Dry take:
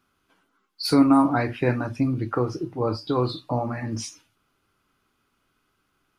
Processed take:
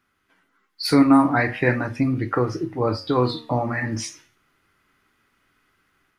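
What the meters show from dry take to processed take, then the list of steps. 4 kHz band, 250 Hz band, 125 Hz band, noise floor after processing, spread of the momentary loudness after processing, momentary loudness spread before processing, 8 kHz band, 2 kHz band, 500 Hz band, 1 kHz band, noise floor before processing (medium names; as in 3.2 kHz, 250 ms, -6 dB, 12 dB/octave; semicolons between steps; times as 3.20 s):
+2.0 dB, +2.0 dB, +2.0 dB, -71 dBFS, 12 LU, 13 LU, +2.5 dB, +8.5 dB, +2.5 dB, +2.5 dB, -72 dBFS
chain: peaking EQ 1.9 kHz +11.5 dB 0.44 oct; level rider gain up to 5 dB; flange 0.38 Hz, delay 9 ms, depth 6.6 ms, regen +85%; trim +2.5 dB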